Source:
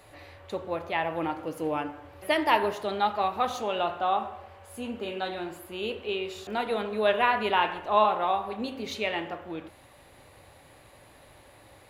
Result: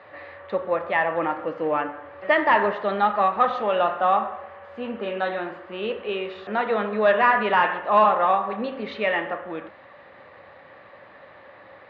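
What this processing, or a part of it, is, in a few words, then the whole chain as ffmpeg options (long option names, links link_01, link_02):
overdrive pedal into a guitar cabinet: -filter_complex "[0:a]asplit=2[link_01][link_02];[link_02]highpass=frequency=720:poles=1,volume=12dB,asoftclip=type=tanh:threshold=-9.5dB[link_03];[link_01][link_03]amix=inputs=2:normalize=0,lowpass=frequency=1400:poles=1,volume=-6dB,highpass=76,equalizer=frequency=200:width_type=q:width=4:gain=9,equalizer=frequency=540:width_type=q:width=4:gain=7,equalizer=frequency=1200:width_type=q:width=4:gain=7,equalizer=frequency=1800:width_type=q:width=4:gain=9,lowpass=frequency=4100:width=0.5412,lowpass=frequency=4100:width=1.3066"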